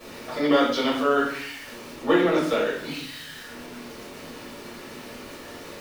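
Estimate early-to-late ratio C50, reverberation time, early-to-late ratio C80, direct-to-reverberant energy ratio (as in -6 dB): 3.5 dB, 0.65 s, 7.5 dB, -11.0 dB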